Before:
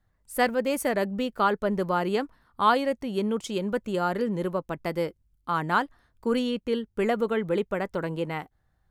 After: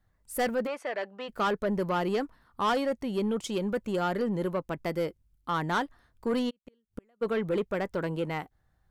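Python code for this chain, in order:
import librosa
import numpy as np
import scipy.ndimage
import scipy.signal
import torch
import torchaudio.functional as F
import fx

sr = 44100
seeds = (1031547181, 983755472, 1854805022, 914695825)

y = fx.gate_flip(x, sr, shuts_db=-22.0, range_db=-42, at=(6.49, 7.21), fade=0.02)
y = 10.0 ** (-21.5 / 20.0) * np.tanh(y / 10.0 ** (-21.5 / 20.0))
y = fx.bandpass_edges(y, sr, low_hz=630.0, high_hz=fx.line((0.66, 2900.0), (1.28, 3800.0)), at=(0.66, 1.28), fade=0.02)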